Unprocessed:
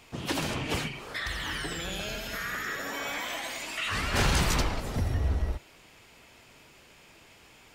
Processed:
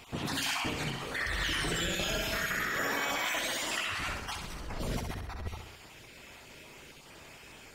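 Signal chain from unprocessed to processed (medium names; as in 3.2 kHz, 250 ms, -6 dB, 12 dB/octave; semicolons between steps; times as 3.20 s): random holes in the spectrogram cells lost 24%; compressor with a negative ratio -36 dBFS, ratio -1; flutter echo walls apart 11.2 m, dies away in 0.72 s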